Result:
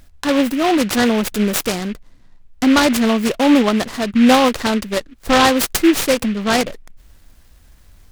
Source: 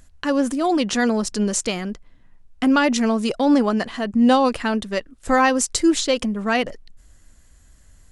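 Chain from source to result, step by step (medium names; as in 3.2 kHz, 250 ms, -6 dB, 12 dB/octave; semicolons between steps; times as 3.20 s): delay time shaken by noise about 2.1 kHz, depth 0.082 ms; trim +4 dB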